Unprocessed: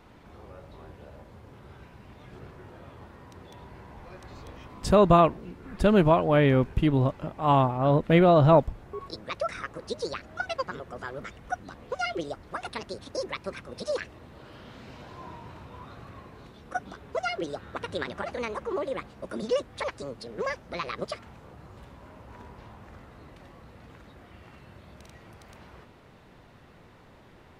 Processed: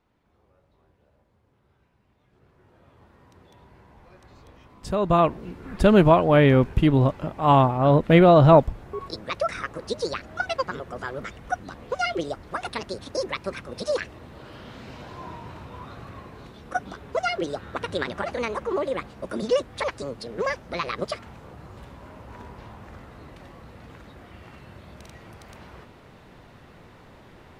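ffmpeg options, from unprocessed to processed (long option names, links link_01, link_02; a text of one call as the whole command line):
ffmpeg -i in.wav -af "volume=4.5dB,afade=type=in:start_time=2.32:duration=0.93:silence=0.281838,afade=type=in:start_time=5:duration=0.48:silence=0.298538" out.wav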